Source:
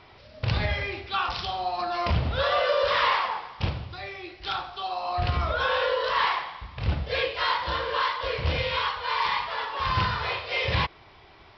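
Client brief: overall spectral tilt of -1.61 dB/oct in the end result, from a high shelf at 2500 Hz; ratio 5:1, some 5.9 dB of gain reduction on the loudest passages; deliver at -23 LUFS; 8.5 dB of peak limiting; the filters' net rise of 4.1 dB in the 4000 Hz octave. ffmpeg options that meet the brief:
-af "highshelf=f=2.5k:g=-4,equalizer=f=4k:t=o:g=8.5,acompressor=threshold=-26dB:ratio=5,volume=10dB,alimiter=limit=-14dB:level=0:latency=1"

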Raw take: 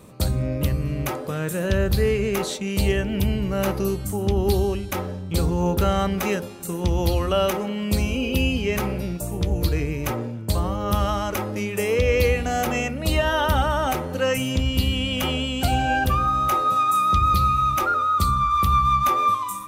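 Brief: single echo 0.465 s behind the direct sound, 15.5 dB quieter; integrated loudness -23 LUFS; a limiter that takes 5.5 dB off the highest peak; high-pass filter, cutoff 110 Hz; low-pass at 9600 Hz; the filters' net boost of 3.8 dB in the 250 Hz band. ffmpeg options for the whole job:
-af "highpass=110,lowpass=9.6k,equalizer=f=250:t=o:g=5.5,alimiter=limit=-14dB:level=0:latency=1,aecho=1:1:465:0.168"

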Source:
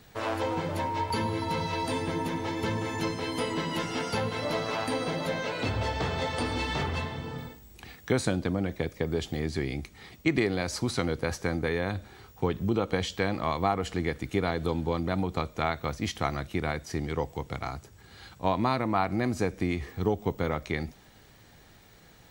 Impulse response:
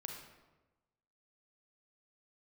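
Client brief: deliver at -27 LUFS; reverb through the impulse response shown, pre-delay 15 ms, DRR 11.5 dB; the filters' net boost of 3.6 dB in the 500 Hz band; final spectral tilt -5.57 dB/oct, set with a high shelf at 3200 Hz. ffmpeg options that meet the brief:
-filter_complex "[0:a]equalizer=f=500:t=o:g=4.5,highshelf=f=3.2k:g=-6.5,asplit=2[a][b];[1:a]atrim=start_sample=2205,adelay=15[c];[b][c]afir=irnorm=-1:irlink=0,volume=-9dB[d];[a][d]amix=inputs=2:normalize=0,volume=2dB"

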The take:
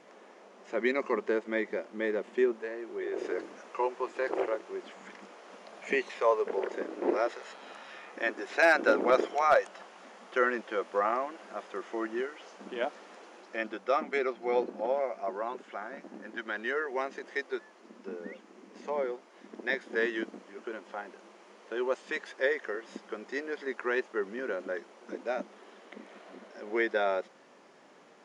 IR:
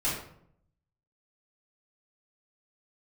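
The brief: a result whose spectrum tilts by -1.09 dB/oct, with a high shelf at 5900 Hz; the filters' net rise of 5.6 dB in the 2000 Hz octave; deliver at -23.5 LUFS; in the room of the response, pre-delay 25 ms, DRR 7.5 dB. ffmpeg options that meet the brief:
-filter_complex "[0:a]equalizer=f=2k:t=o:g=7.5,highshelf=f=5.9k:g=-5.5,asplit=2[a][b];[1:a]atrim=start_sample=2205,adelay=25[c];[b][c]afir=irnorm=-1:irlink=0,volume=-16dB[d];[a][d]amix=inputs=2:normalize=0,volume=5.5dB"

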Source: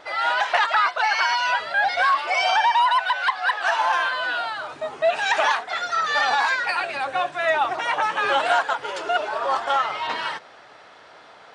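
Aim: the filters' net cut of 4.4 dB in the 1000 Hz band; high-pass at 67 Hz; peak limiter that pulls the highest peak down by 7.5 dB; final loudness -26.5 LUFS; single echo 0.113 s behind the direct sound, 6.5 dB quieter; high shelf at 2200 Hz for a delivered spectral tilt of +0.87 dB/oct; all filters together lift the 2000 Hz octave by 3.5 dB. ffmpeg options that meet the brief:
-af "highpass=67,equalizer=f=1k:t=o:g=-8.5,equalizer=f=2k:t=o:g=4,highshelf=f=2.2k:g=7.5,alimiter=limit=-12.5dB:level=0:latency=1,aecho=1:1:113:0.473,volume=-5.5dB"

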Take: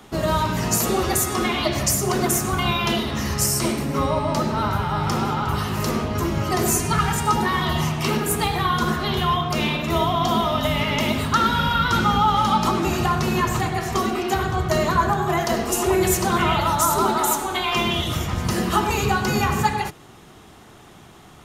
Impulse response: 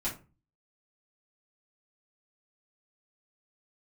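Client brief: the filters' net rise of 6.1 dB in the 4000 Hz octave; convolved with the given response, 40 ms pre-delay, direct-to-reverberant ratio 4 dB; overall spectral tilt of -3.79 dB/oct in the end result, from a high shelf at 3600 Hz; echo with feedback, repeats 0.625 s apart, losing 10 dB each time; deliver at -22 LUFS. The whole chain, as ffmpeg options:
-filter_complex "[0:a]highshelf=f=3.6k:g=4.5,equalizer=f=4k:t=o:g=5,aecho=1:1:625|1250|1875|2500:0.316|0.101|0.0324|0.0104,asplit=2[a][b];[1:a]atrim=start_sample=2205,adelay=40[c];[b][c]afir=irnorm=-1:irlink=0,volume=-8dB[d];[a][d]amix=inputs=2:normalize=0,volume=-5dB"

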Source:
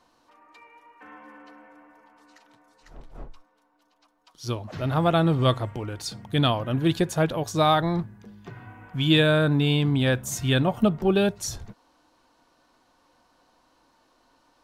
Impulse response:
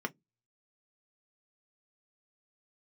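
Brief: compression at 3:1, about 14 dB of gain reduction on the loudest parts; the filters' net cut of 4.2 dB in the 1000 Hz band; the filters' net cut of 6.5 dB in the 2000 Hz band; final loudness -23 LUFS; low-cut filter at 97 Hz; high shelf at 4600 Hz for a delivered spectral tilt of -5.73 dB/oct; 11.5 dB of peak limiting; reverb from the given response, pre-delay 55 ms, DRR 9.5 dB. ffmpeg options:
-filter_complex "[0:a]highpass=97,equalizer=f=1k:t=o:g=-4,equalizer=f=2k:t=o:g=-6,highshelf=f=4.6k:g=-8,acompressor=threshold=-36dB:ratio=3,alimiter=level_in=10dB:limit=-24dB:level=0:latency=1,volume=-10dB,asplit=2[a][b];[1:a]atrim=start_sample=2205,adelay=55[c];[b][c]afir=irnorm=-1:irlink=0,volume=-13.5dB[d];[a][d]amix=inputs=2:normalize=0,volume=20dB"

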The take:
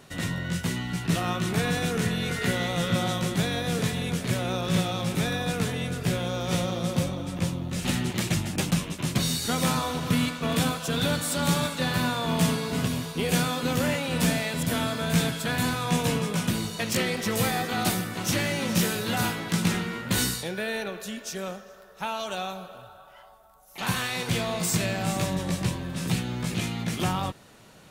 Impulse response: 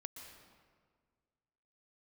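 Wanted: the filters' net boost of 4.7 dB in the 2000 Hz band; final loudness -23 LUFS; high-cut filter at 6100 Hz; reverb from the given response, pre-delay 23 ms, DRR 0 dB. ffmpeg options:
-filter_complex "[0:a]lowpass=6.1k,equalizer=f=2k:t=o:g=6,asplit=2[a][b];[1:a]atrim=start_sample=2205,adelay=23[c];[b][c]afir=irnorm=-1:irlink=0,volume=4dB[d];[a][d]amix=inputs=2:normalize=0"

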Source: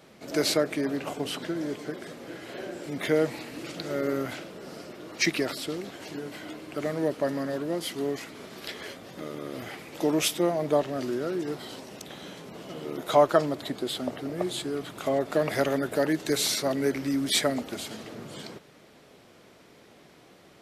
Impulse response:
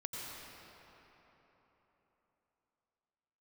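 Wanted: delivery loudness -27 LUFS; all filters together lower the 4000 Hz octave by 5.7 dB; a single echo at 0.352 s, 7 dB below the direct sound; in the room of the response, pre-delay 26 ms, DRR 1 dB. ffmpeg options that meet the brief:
-filter_complex "[0:a]equalizer=f=4k:t=o:g=-7,aecho=1:1:352:0.447,asplit=2[a][b];[1:a]atrim=start_sample=2205,adelay=26[c];[b][c]afir=irnorm=-1:irlink=0,volume=-2dB[d];[a][d]amix=inputs=2:normalize=0,volume=-0.5dB"

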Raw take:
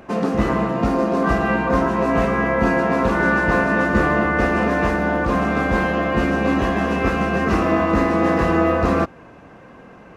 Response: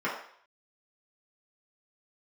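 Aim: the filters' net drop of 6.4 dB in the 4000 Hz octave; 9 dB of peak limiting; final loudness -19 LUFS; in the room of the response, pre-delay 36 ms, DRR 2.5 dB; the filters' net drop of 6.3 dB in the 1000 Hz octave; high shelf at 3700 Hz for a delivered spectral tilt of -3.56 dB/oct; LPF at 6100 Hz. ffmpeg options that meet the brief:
-filter_complex "[0:a]lowpass=6.1k,equalizer=f=1k:t=o:g=-7.5,highshelf=f=3.7k:g=-6,equalizer=f=4k:t=o:g=-4.5,alimiter=limit=-14dB:level=0:latency=1,asplit=2[a][b];[1:a]atrim=start_sample=2205,adelay=36[c];[b][c]afir=irnorm=-1:irlink=0,volume=-13dB[d];[a][d]amix=inputs=2:normalize=0,volume=2dB"

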